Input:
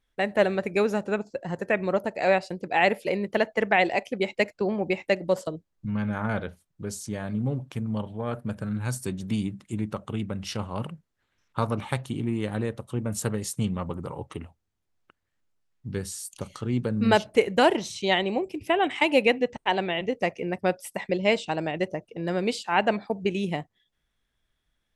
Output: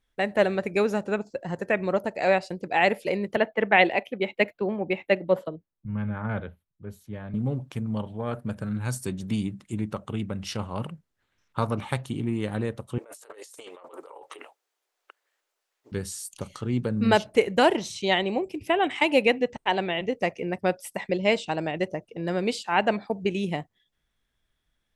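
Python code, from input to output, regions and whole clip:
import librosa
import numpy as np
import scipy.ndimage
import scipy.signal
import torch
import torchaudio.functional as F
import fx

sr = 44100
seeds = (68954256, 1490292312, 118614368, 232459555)

y = fx.chain(x, sr, fx.band_shelf(hz=6700.0, db=-15.5, octaves=1.3),
    fx.notch(hz=700.0, q=23.0),
    fx.band_widen(depth_pct=70), at=(3.36, 7.34))
y = fx.chain(y, sr, fx.cheby2_highpass(hz=210.0, order=4, stop_db=40),
    fx.over_compress(threshold_db=-46.0, ratio=-1.0), at=(12.98, 15.92))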